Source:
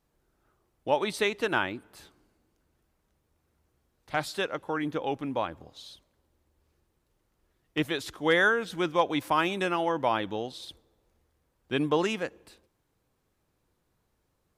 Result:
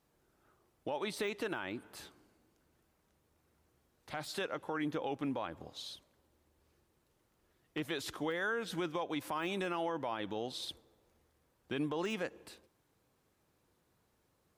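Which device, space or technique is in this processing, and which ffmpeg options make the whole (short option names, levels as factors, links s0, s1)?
podcast mastering chain: -af "highpass=f=99:p=1,deesser=0.9,acompressor=threshold=0.0224:ratio=4,alimiter=level_in=1.58:limit=0.0631:level=0:latency=1:release=24,volume=0.631,volume=1.19" -ar 44100 -c:a libmp3lame -b:a 96k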